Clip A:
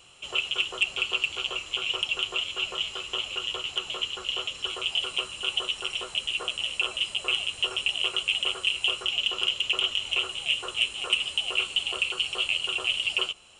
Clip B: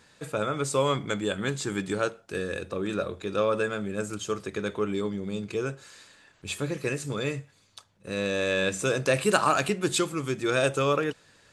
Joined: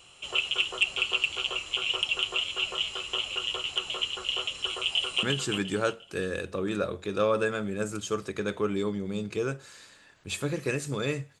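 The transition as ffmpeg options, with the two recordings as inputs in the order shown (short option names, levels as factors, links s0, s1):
-filter_complex "[0:a]apad=whole_dur=11.4,atrim=end=11.4,atrim=end=5.232[s0];[1:a]atrim=start=1.408:end=7.58[s1];[s0][s1]acrossfade=d=0.004:c1=hsin:c2=hsin,asplit=2[s2][s3];[s3]afade=t=in:st=4.82:d=0.01,afade=t=out:st=5.23:d=0.01,aecho=0:1:350|700|1050|1400:0.530884|0.159265|0.0477796|0.0143339[s4];[s2][s4]amix=inputs=2:normalize=0"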